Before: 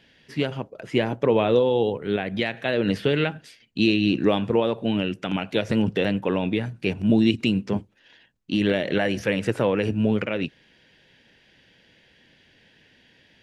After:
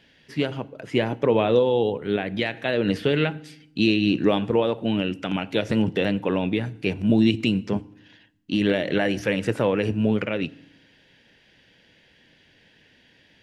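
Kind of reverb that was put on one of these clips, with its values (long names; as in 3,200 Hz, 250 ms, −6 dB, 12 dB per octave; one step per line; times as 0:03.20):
feedback delay network reverb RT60 0.75 s, low-frequency decay 1.6×, high-frequency decay 0.9×, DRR 18.5 dB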